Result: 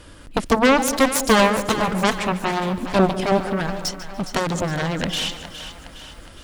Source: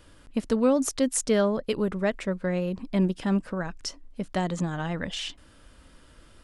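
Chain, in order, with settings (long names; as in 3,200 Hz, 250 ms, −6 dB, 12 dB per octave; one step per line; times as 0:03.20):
harmonic generator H 7 −8 dB, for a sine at −11.5 dBFS
echo with a time of its own for lows and highs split 630 Hz, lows 198 ms, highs 413 ms, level −11.5 dB
feedback echo at a low word length 145 ms, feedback 35%, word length 8 bits, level −14.5 dB
level +5.5 dB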